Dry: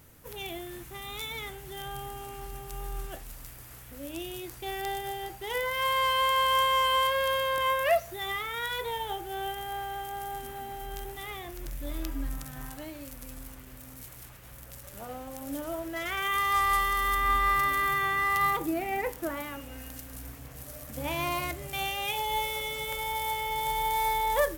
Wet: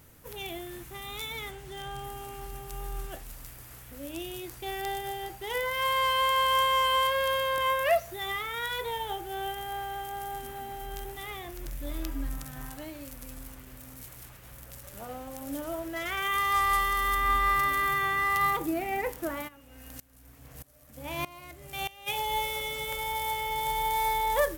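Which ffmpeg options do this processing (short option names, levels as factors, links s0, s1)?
-filter_complex "[0:a]asettb=1/sr,asplit=3[s0][s1][s2];[s0]atrim=end=1.514[s3];[s1]atrim=start=1.51:end=2.04,asetpts=PTS-STARTPTS,afade=t=in:d=0.004:c=qsin,afade=t=out:st=0.526:d=0.004:c=qsin,equalizer=f=13000:w=1.5:g=-11.5[s4];[s2]atrim=start=2.036[s5];[s3][s4]acrossfade=d=0.004:c1=hsin:c2=qsin[s6];[s6][s5]acrossfade=d=0.004:c1=qsin:c2=hsin,asplit=3[s7][s8][s9];[s7]afade=t=out:st=19.47:d=0.02[s10];[s8]aeval=exprs='val(0)*pow(10,-20*if(lt(mod(-1.6*n/s,1),2*abs(-1.6)/1000),1-mod(-1.6*n/s,1)/(2*abs(-1.6)/1000),(mod(-1.6*n/s,1)-2*abs(-1.6)/1000)/(1-2*abs(-1.6)/1000))/20)':c=same,afade=t=in:st=19.47:d=0.02,afade=t=out:st=22.06:d=0.02[s11];[s9]afade=t=in:st=22.06:d=0.02[s12];[s10][s11][s12]amix=inputs=3:normalize=0"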